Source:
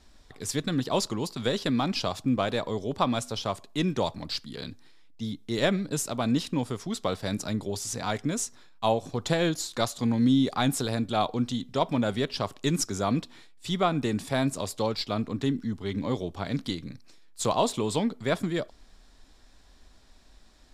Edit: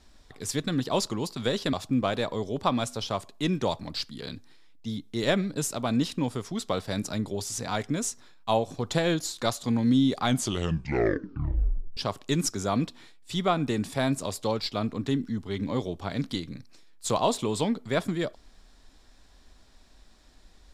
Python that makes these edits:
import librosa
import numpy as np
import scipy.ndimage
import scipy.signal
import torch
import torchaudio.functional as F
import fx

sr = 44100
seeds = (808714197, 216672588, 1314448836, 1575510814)

y = fx.edit(x, sr, fx.cut(start_s=1.73, length_s=0.35),
    fx.tape_stop(start_s=10.57, length_s=1.75), tone=tone)